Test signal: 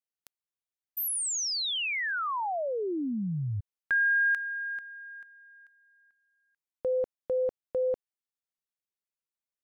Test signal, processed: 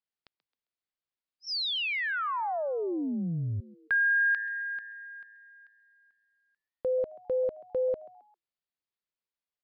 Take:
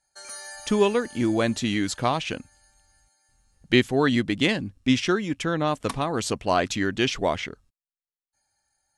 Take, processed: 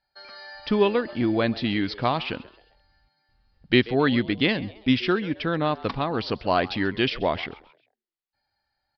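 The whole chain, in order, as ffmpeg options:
-filter_complex "[0:a]asplit=2[a][b];[b]asplit=3[c][d][e];[c]adelay=133,afreqshift=110,volume=-20dB[f];[d]adelay=266,afreqshift=220,volume=-28.2dB[g];[e]adelay=399,afreqshift=330,volume=-36.4dB[h];[f][g][h]amix=inputs=3:normalize=0[i];[a][i]amix=inputs=2:normalize=0,aresample=11025,aresample=44100"

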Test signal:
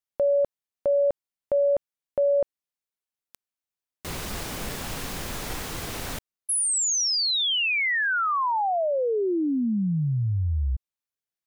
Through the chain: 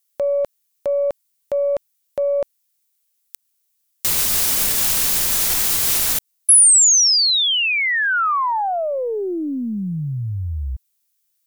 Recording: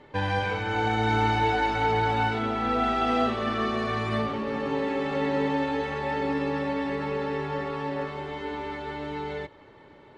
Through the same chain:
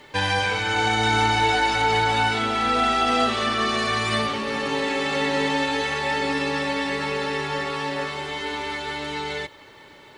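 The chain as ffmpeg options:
-filter_complex "[0:a]acrossover=split=1400[a][b];[a]aeval=exprs='0.211*(cos(1*acos(clip(val(0)/0.211,-1,1)))-cos(1*PI/2))+0.00266*(cos(4*acos(clip(val(0)/0.211,-1,1)))-cos(4*PI/2))':c=same[c];[b]alimiter=level_in=5dB:limit=-24dB:level=0:latency=1:release=113,volume=-5dB[d];[c][d]amix=inputs=2:normalize=0,crystalizer=i=9.5:c=0"

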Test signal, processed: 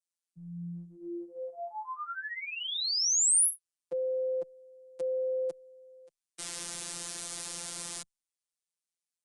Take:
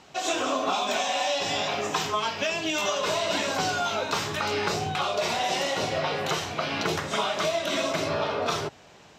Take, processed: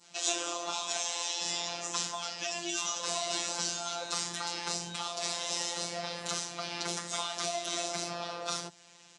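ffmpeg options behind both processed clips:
-filter_complex "[0:a]adynamicequalizer=threshold=0.00631:dfrequency=2500:dqfactor=1.1:tfrequency=2500:tqfactor=1.1:attack=5:release=100:ratio=0.375:range=3:mode=cutabove:tftype=bell,acrossover=split=110|820|3000[a][b][c][d];[a]acompressor=threshold=-50dB:ratio=6[e];[e][b][c][d]amix=inputs=4:normalize=0,aresample=22050,aresample=44100,crystalizer=i=5.5:c=0,afreqshift=25,afftfilt=real='hypot(re,im)*cos(PI*b)':imag='0':win_size=1024:overlap=0.75,volume=-8.5dB"

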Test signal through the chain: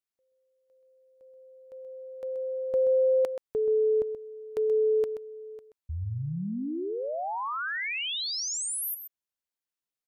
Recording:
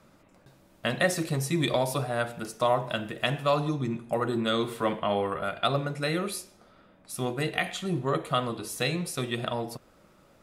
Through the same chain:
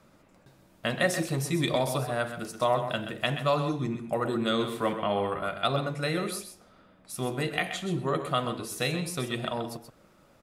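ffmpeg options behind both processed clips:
-af "aecho=1:1:129:0.335,volume=-1dB"

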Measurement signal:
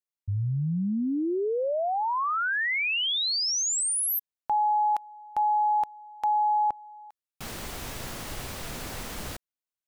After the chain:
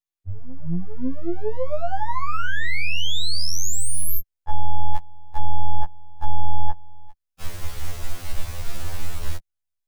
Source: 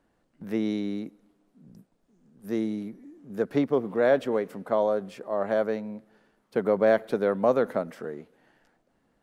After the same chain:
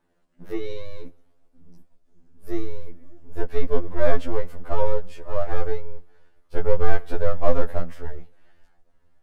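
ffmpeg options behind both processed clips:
-af "aeval=exprs='if(lt(val(0),0),0.447*val(0),val(0))':c=same,acontrast=60,asubboost=boost=11.5:cutoff=60,afftfilt=real='re*2*eq(mod(b,4),0)':imag='im*2*eq(mod(b,4),0)':win_size=2048:overlap=0.75,volume=-2.5dB"

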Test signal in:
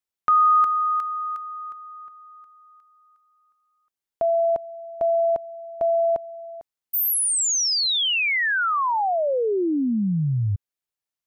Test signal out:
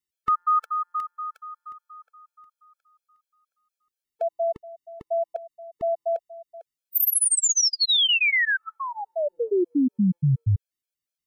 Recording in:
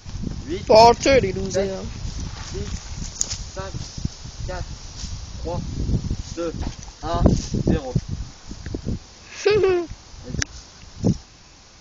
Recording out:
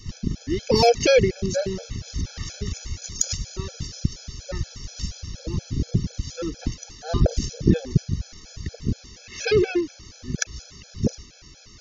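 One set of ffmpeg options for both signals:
-af "equalizer=f=910:w=1.6:g=-13,afftfilt=real='re*gt(sin(2*PI*4.2*pts/sr)*(1-2*mod(floor(b*sr/1024/440),2)),0)':imag='im*gt(sin(2*PI*4.2*pts/sr)*(1-2*mod(floor(b*sr/1024/440),2)),0)':win_size=1024:overlap=0.75,volume=3.5dB"

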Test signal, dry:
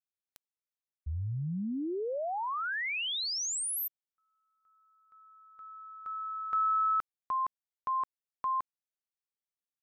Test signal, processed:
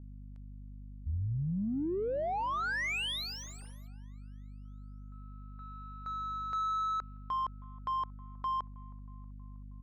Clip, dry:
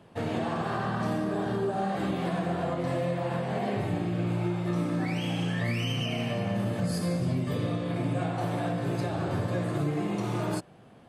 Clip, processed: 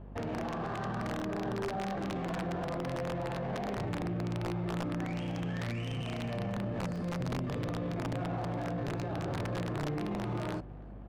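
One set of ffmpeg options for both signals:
-filter_complex "[0:a]aeval=exprs='val(0)+0.00447*(sin(2*PI*50*n/s)+sin(2*PI*2*50*n/s)/2+sin(2*PI*3*50*n/s)/3+sin(2*PI*4*50*n/s)/4+sin(2*PI*5*50*n/s)/5)':c=same,aeval=exprs='(mod(11.2*val(0)+1,2)-1)/11.2':c=same,alimiter=level_in=5dB:limit=-24dB:level=0:latency=1:release=22,volume=-5dB,asplit=2[a][b];[b]aecho=0:1:318|636|954|1272|1590:0.0841|0.0505|0.0303|0.0182|0.0109[c];[a][c]amix=inputs=2:normalize=0,adynamicsmooth=sensitivity=6:basefreq=1.4k,volume=1dB"

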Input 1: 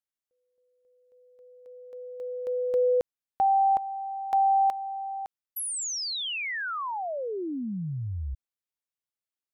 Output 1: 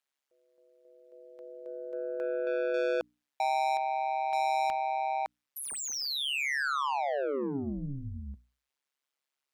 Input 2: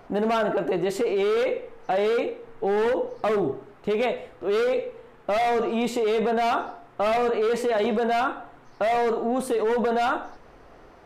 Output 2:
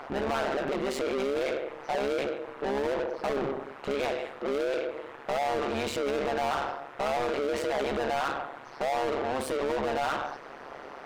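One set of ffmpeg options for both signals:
-filter_complex "[0:a]asplit=2[a][b];[b]highpass=f=720:p=1,volume=27dB,asoftclip=type=tanh:threshold=-14dB[c];[a][c]amix=inputs=2:normalize=0,lowpass=f=3.6k:p=1,volume=-6dB,tremolo=f=140:d=0.919,bandreject=f=60:t=h:w=6,bandreject=f=120:t=h:w=6,bandreject=f=180:t=h:w=6,bandreject=f=240:t=h:w=6,bandreject=f=300:t=h:w=6,volume=-6dB"

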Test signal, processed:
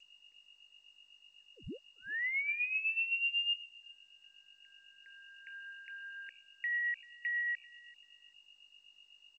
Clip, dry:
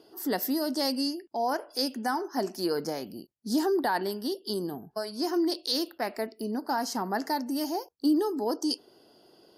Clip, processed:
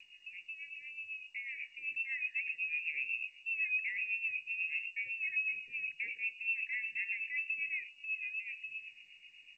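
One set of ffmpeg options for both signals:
-filter_complex "[0:a]tiltshelf=f=760:g=5,bandreject=f=60:t=h:w=6,bandreject=f=120:t=h:w=6,bandreject=f=180:t=h:w=6,bandreject=f=240:t=h:w=6,bandreject=f=300:t=h:w=6,bandreject=f=360:t=h:w=6,bandreject=f=420:t=h:w=6,bandreject=f=480:t=h:w=6,bandreject=f=540:t=h:w=6,bandreject=f=600:t=h:w=6,areverse,acompressor=threshold=-40dB:ratio=5,areverse,alimiter=level_in=14dB:limit=-24dB:level=0:latency=1:release=18,volume=-14dB,dynaudnorm=f=260:g=13:m=11dB,aeval=exprs='val(0)+0.00141*(sin(2*PI*50*n/s)+sin(2*PI*2*50*n/s)/2+sin(2*PI*3*50*n/s)/3+sin(2*PI*4*50*n/s)/4+sin(2*PI*5*50*n/s)/5)':c=same,acrossover=split=1100[a][b];[a]aeval=exprs='val(0)*(1-0.7/2+0.7/2*cos(2*PI*8*n/s))':c=same[c];[b]aeval=exprs='val(0)*(1-0.7/2-0.7/2*cos(2*PI*8*n/s))':c=same[d];[c][d]amix=inputs=2:normalize=0,asplit=2[e][f];[f]aecho=0:1:389|778:0.075|0.0135[g];[e][g]amix=inputs=2:normalize=0,lowpass=f=2.5k:t=q:w=0.5098,lowpass=f=2.5k:t=q:w=0.6013,lowpass=f=2.5k:t=q:w=0.9,lowpass=f=2.5k:t=q:w=2.563,afreqshift=-2900,asuperstop=centerf=950:order=20:qfactor=0.79" -ar 16000 -c:a g722

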